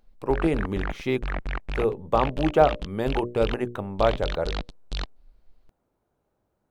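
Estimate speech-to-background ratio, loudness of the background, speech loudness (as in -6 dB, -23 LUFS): 8.5 dB, -34.5 LUFS, -26.0 LUFS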